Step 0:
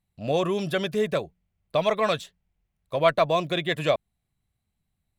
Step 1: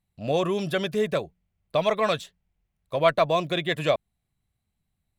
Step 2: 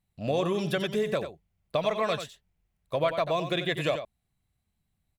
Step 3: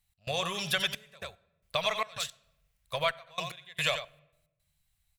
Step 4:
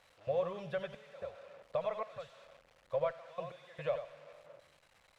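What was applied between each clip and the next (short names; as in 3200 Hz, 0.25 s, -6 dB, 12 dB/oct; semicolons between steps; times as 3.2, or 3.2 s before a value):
nothing audible
compressor 4:1, threshold -24 dBFS, peak gain reduction 9 dB; echo 91 ms -9.5 dB
passive tone stack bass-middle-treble 10-0-10; step gate "x.xxxxx..x..xxx." 111 bpm -24 dB; on a send at -21 dB: reverb RT60 0.95 s, pre-delay 4 ms; on the sum: gain +9 dB
switching spikes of -23 dBFS; LPF 1100 Hz 12 dB/oct; bell 530 Hz +13 dB 0.39 oct; gain -7 dB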